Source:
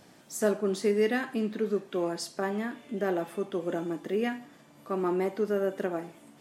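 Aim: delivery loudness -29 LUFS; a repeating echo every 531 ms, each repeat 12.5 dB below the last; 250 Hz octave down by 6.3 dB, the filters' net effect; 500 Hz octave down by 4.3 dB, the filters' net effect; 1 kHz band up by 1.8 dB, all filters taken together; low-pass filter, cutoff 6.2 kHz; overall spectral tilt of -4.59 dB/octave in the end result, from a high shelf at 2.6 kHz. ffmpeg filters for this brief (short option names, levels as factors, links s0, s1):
-af "lowpass=6200,equalizer=f=250:t=o:g=-8,equalizer=f=500:t=o:g=-3.5,equalizer=f=1000:t=o:g=6,highshelf=f=2600:g=-9,aecho=1:1:531|1062|1593:0.237|0.0569|0.0137,volume=1.88"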